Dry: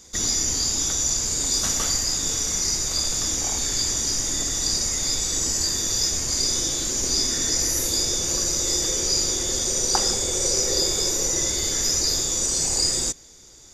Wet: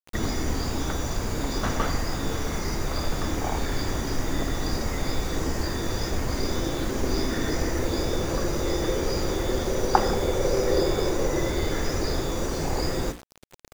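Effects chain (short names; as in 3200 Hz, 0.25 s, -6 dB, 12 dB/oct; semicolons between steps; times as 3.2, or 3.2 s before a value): LPF 1600 Hz 12 dB/oct; notches 60/120/180/240/300/360/420/480/540 Hz; requantised 8-bit, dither none; gain +7 dB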